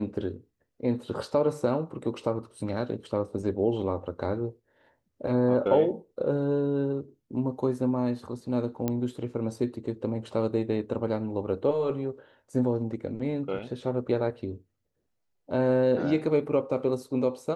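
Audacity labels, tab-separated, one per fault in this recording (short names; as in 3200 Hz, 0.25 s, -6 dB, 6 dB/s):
8.880000	8.880000	pop -15 dBFS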